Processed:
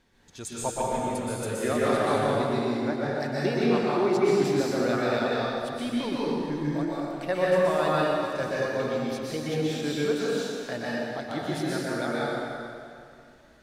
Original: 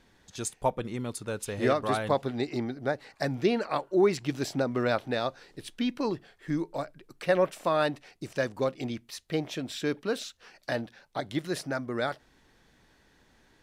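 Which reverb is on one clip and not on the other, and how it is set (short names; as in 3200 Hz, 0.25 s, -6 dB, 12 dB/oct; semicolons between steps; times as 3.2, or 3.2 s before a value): plate-style reverb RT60 2.5 s, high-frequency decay 0.8×, pre-delay 0.11 s, DRR -7 dB; gain -4.5 dB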